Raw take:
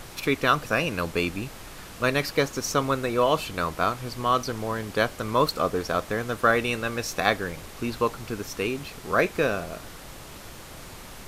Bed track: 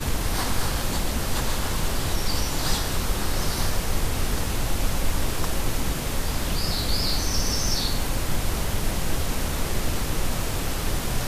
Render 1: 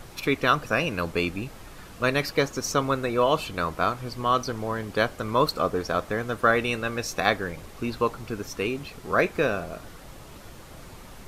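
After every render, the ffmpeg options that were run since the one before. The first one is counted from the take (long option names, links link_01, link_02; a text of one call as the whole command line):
ffmpeg -i in.wav -af "afftdn=noise_reduction=6:noise_floor=-43" out.wav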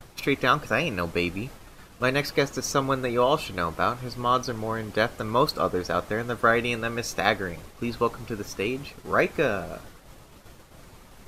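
ffmpeg -i in.wav -af "agate=range=-33dB:threshold=-38dB:ratio=3:detection=peak" out.wav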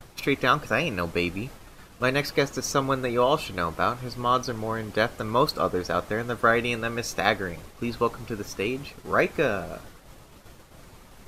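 ffmpeg -i in.wav -af anull out.wav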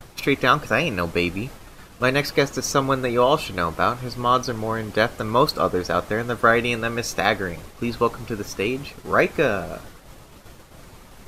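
ffmpeg -i in.wav -af "volume=4dB,alimiter=limit=-3dB:level=0:latency=1" out.wav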